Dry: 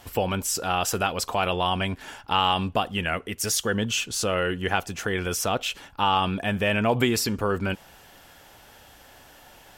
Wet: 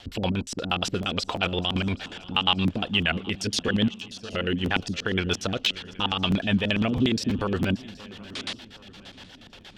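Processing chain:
high-shelf EQ 4,800 Hz +10.5 dB
in parallel at −2 dB: compressor whose output falls as the input rises −27 dBFS
0:03.88–0:04.33: on the sum: tuned comb filter 220 Hz, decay 0.44 s, harmonics all, mix 90%
0:08.32–0:08.56: sound drawn into the spectrogram noise 220–11,000 Hz −26 dBFS
rotating-speaker cabinet horn 6.7 Hz
auto-filter low-pass square 8.5 Hz 250–3,700 Hz
on a send: feedback echo with a long and a short gap by turns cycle 774 ms, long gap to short 3 to 1, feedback 42%, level −20 dB
on the sum: regular buffer underruns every 0.33 s, samples 512, repeat, from 0:00.69
level −3.5 dB

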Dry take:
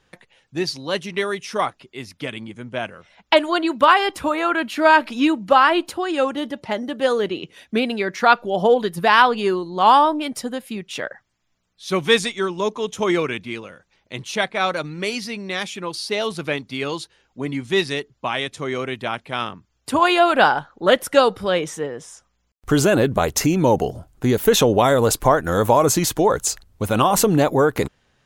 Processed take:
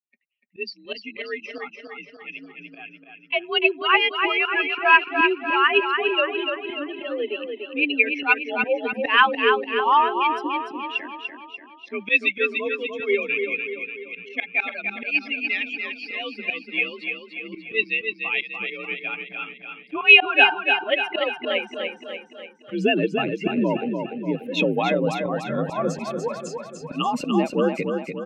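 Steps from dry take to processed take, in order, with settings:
spectral dynamics exaggerated over time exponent 2
high-pass filter 100 Hz 24 dB per octave
parametric band 230 Hz +5 dB 1.3 octaves
in parallel at +2 dB: downward compressor, threshold −28 dBFS, peak gain reduction 17.5 dB
on the sum: frequency shifter +52 Hz
volume swells 138 ms
low-pass with resonance 2,600 Hz, resonance Q 12
on a send: repeating echo 293 ms, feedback 53%, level −5.5 dB
on the sum: level −3.5 dB

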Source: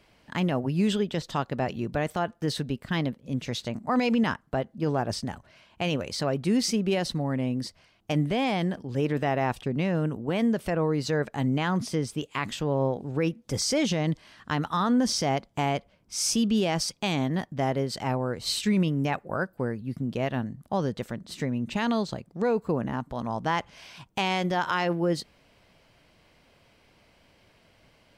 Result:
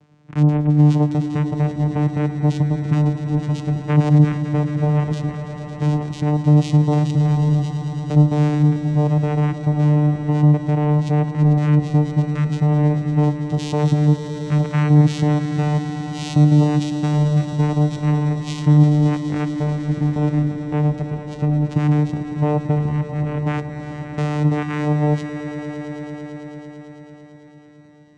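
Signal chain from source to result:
low-shelf EQ 130 Hz +10.5 dB
channel vocoder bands 4, saw 149 Hz
echo that builds up and dies away 111 ms, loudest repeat 5, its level −13 dB
level +8 dB

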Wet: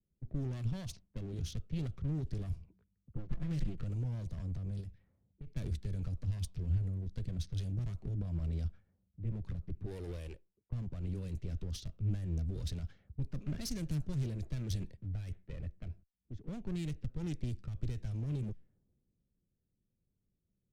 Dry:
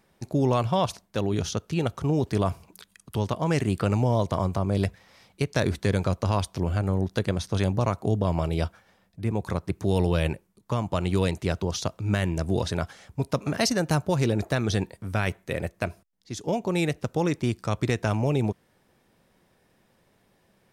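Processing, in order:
0:03.16–0:03.80: lower of the sound and its delayed copy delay 5.8 ms
low-pass that shuts in the quiet parts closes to 750 Hz, open at −19 dBFS
0:09.86–0:10.72: low shelf with overshoot 290 Hz −11 dB, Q 1.5
brickwall limiter −18.5 dBFS, peak gain reduction 7.5 dB
asymmetric clip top −39.5 dBFS, bottom −24 dBFS
0:04.80–0:05.47: downward compressor 4 to 1, threshold −41 dBFS, peak gain reduction 8.5 dB
guitar amp tone stack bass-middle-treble 10-0-1
low-pass that shuts in the quiet parts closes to 610 Hz, open at −47.5 dBFS
multiband upward and downward expander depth 40%
level +11 dB

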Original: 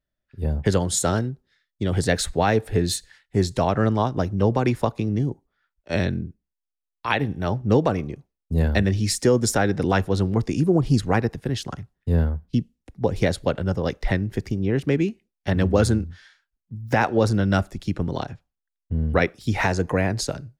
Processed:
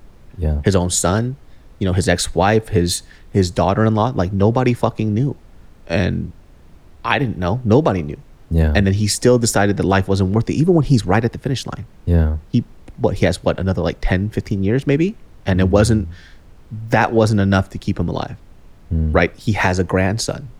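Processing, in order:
background noise brown −47 dBFS
level +5.5 dB

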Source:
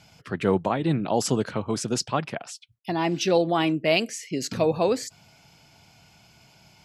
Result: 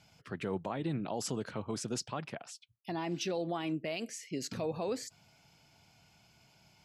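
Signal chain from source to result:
brickwall limiter −17 dBFS, peak gain reduction 8.5 dB
level −9 dB

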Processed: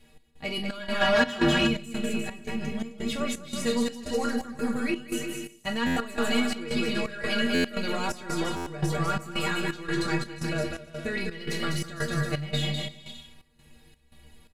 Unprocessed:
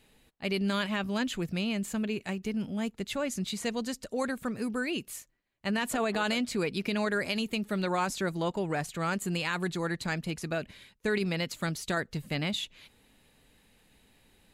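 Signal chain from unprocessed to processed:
peak hold with a decay on every bin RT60 0.31 s
in parallel at −4 dB: soft clipping −31.5 dBFS, distortion −8 dB
on the sum: high-shelf EQ 7,700 Hz −4 dB
on a send: bouncing-ball delay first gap 200 ms, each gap 0.75×, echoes 5
0:01.01–0:01.67: on the sum: mid-hump overdrive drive 21 dB, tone 2,400 Hz, clips at −11 dBFS
low-shelf EQ 79 Hz +11.5 dB
stiff-string resonator 70 Hz, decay 0.41 s, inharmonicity 0.03
gate pattern "x.xx.xx.x" 85 BPM −12 dB
buffer that repeats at 0:05.86/0:07.54/0:08.56, samples 512, times 8
level +8 dB

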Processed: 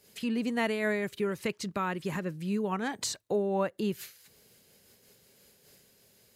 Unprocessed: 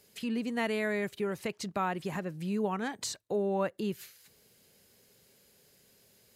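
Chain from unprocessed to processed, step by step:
0:01.07–0:02.72: parametric band 730 Hz −8.5 dB 0.42 octaves
amplitude modulation by smooth noise, depth 60%
level +5.5 dB

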